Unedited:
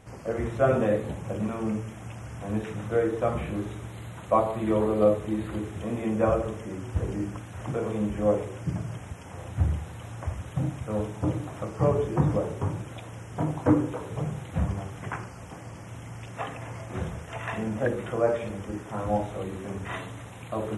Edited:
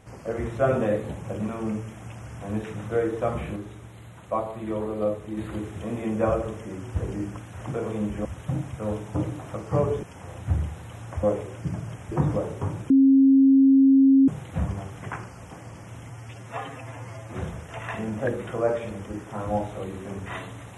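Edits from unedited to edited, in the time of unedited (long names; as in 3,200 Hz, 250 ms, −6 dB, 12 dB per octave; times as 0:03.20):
0:03.56–0:05.37: clip gain −5 dB
0:08.25–0:09.13: swap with 0:10.33–0:12.11
0:12.90–0:14.28: beep over 270 Hz −12.5 dBFS
0:16.10–0:16.92: time-stretch 1.5×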